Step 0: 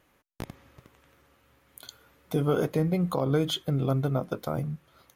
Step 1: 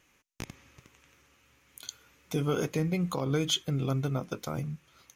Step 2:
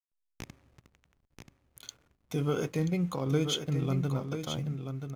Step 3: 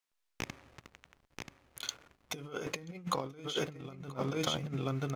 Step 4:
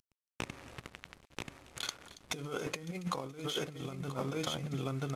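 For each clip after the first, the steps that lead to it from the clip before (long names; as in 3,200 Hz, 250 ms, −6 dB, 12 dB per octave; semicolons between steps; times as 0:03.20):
graphic EQ with 15 bands 630 Hz −5 dB, 2,500 Hz +8 dB, 6,300 Hz +12 dB; level −3 dB
harmonic and percussive parts rebalanced percussive −4 dB; slack as between gear wheels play −51 dBFS; single-tap delay 983 ms −7.5 dB
compressor whose output falls as the input rises −36 dBFS, ratio −0.5; mid-hump overdrive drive 11 dB, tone 4,800 Hz, clips at −16 dBFS
variable-slope delta modulation 64 kbit/s; downward compressor 3 to 1, threshold −46 dBFS, peak gain reduction 14 dB; delay with a high-pass on its return 278 ms, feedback 35%, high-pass 2,900 Hz, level −16 dB; level +9 dB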